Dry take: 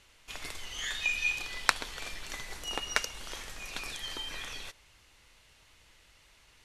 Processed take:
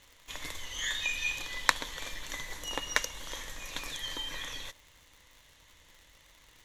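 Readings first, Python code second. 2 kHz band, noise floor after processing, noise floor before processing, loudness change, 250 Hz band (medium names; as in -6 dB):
-0.5 dB, -61 dBFS, -62 dBFS, 0.0 dB, +1.0 dB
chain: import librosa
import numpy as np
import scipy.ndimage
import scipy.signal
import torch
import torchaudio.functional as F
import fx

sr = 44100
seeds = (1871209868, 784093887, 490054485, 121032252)

y = fx.ripple_eq(x, sr, per_octave=1.1, db=7)
y = fx.dmg_crackle(y, sr, seeds[0], per_s=120.0, level_db=-45.0)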